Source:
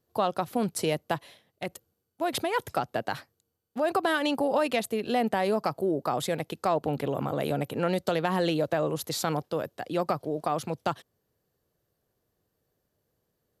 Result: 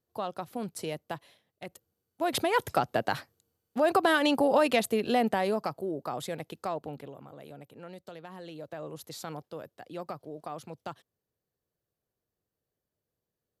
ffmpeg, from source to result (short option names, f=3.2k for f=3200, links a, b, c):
-af "volume=9.5dB,afade=t=in:st=1.73:d=0.8:silence=0.316228,afade=t=out:st=4.95:d=0.87:silence=0.375837,afade=t=out:st=6.61:d=0.58:silence=0.251189,afade=t=in:st=8.46:d=0.54:silence=0.421697"